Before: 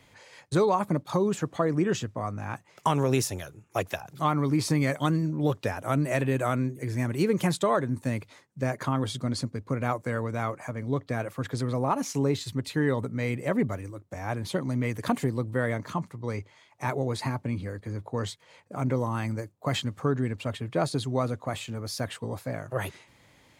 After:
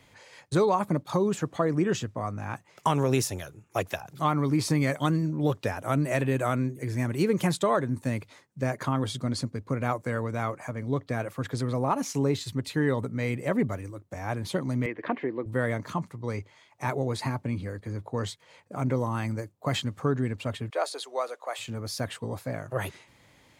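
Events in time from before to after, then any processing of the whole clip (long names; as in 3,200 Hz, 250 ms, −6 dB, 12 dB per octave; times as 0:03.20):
0:14.86–0:15.46: loudspeaker in its box 330–2,700 Hz, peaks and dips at 340 Hz +7 dB, 810 Hz −3 dB, 1,300 Hz −4 dB, 1,900 Hz +4 dB
0:20.70–0:21.59: inverse Chebyshev high-pass filter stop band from 180 Hz, stop band 50 dB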